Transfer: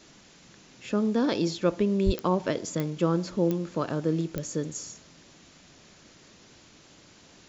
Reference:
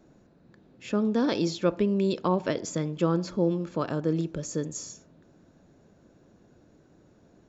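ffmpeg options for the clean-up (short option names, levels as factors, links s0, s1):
-filter_complex "[0:a]adeclick=t=4,asplit=3[s0][s1][s2];[s0]afade=t=out:st=2.05:d=0.02[s3];[s1]highpass=f=140:w=0.5412,highpass=f=140:w=1.3066,afade=t=in:st=2.05:d=0.02,afade=t=out:st=2.17:d=0.02[s4];[s2]afade=t=in:st=2.17:d=0.02[s5];[s3][s4][s5]amix=inputs=3:normalize=0,afwtdn=0.0025"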